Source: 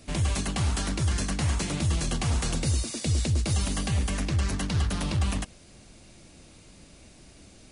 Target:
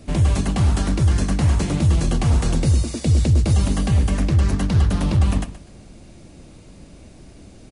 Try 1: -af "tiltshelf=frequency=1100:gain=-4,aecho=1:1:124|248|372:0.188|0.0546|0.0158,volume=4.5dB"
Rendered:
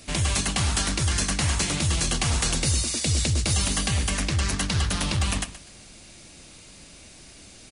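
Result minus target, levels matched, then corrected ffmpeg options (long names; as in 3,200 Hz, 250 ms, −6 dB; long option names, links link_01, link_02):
1,000 Hz band +3.5 dB
-af "tiltshelf=frequency=1100:gain=5,aecho=1:1:124|248|372:0.188|0.0546|0.0158,volume=4.5dB"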